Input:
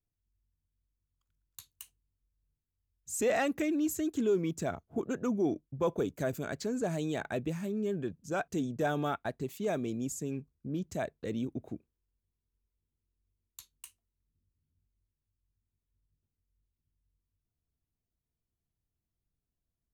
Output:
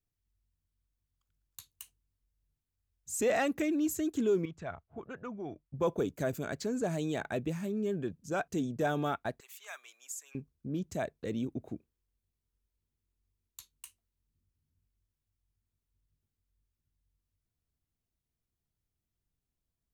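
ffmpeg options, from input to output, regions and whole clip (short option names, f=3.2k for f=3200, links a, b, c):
-filter_complex "[0:a]asettb=1/sr,asplit=3[a][b][c];[a]atrim=end=4.454[d];[b]atrim=start=4.45:end=5.74,asetpts=PTS-STARTPTS,afade=t=in:d=0.004:c=qsin,afade=t=out:st=1.286:d=0.004:c=qsin,lowpass=2.4k,equalizer=f=290:t=o:w=2:g=-13.5[e];[c]atrim=start=5.736[f];[d][e]acrossfade=d=0.004:c1=hsin:c2=qsin[g];[g][f]acrossfade=d=0.004:c1=qsin:c2=hsin,asettb=1/sr,asplit=3[h][i][j];[h]atrim=end=9.404[k];[i]atrim=start=9.4:end=10.35,asetpts=PTS-STARTPTS,afade=t=in:d=0.004:c=qsin,afade=t=out:st=0.946:d=0.004:c=qsin,highpass=f=1.1k:w=0.5412,highpass=f=1.1k:w=1.3066,equalizer=f=4.3k:t=o:w=0.74:g=-4.5[l];[j]atrim=start=10.346[m];[k][l]acrossfade=d=0.004:c1=hsin:c2=qsin[n];[n][m]acrossfade=d=0.004:c1=qsin:c2=hsin"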